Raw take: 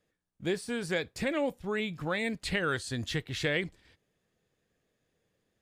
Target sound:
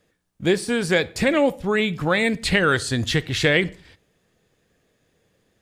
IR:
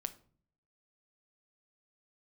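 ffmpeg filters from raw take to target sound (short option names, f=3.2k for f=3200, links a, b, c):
-filter_complex "[0:a]asplit=2[a][b];[1:a]atrim=start_sample=2205,afade=t=out:st=0.15:d=0.01,atrim=end_sample=7056,asetrate=24696,aresample=44100[c];[b][c]afir=irnorm=-1:irlink=0,volume=-8.5dB[d];[a][d]amix=inputs=2:normalize=0,volume=8.5dB"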